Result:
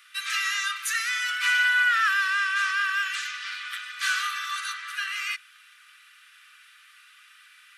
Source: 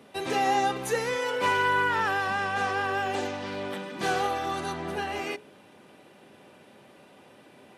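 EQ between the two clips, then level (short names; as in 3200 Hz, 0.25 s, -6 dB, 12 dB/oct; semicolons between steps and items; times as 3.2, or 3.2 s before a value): steep high-pass 1200 Hz 96 dB/oct; +7.0 dB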